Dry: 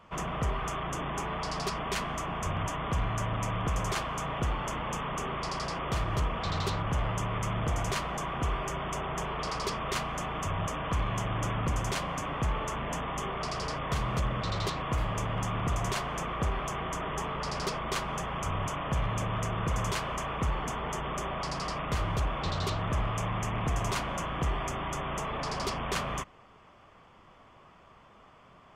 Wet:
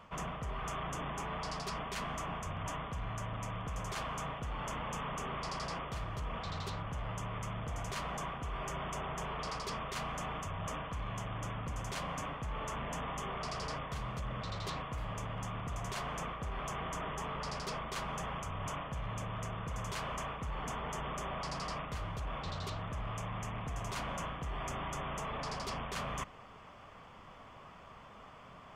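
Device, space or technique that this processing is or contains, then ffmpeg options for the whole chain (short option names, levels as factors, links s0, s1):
compression on the reversed sound: -af "areverse,acompressor=threshold=0.00891:ratio=5,areverse,equalizer=f=350:w=4.6:g=-5.5,volume=1.41"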